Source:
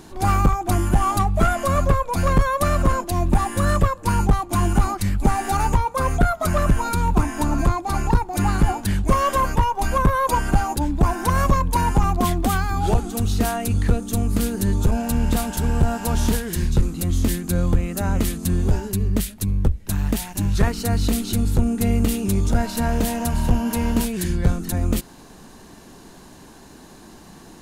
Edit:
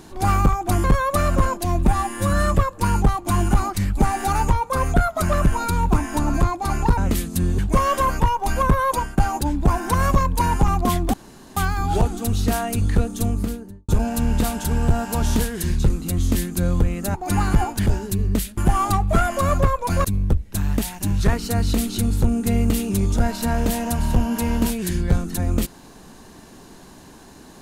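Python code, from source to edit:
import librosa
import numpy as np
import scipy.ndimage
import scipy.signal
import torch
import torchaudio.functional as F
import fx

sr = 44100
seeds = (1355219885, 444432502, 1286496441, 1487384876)

y = fx.studio_fade_out(x, sr, start_s=14.11, length_s=0.7)
y = fx.edit(y, sr, fx.move(start_s=0.84, length_s=1.47, to_s=19.39),
    fx.stretch_span(start_s=3.34, length_s=0.45, factor=1.5),
    fx.swap(start_s=8.22, length_s=0.72, other_s=18.07, other_length_s=0.61),
    fx.fade_out_to(start_s=10.25, length_s=0.28, floor_db=-20.0),
    fx.insert_room_tone(at_s=12.49, length_s=0.43), tone=tone)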